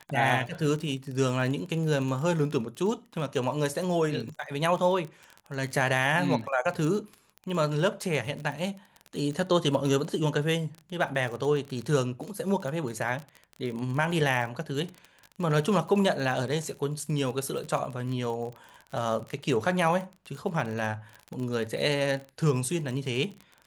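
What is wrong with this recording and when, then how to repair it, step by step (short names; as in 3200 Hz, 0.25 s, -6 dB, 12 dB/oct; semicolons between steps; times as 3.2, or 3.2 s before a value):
crackle 31/s -33 dBFS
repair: de-click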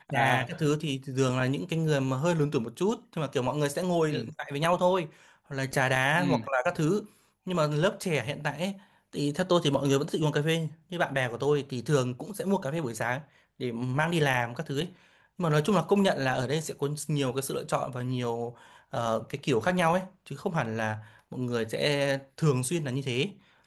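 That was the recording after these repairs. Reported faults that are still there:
none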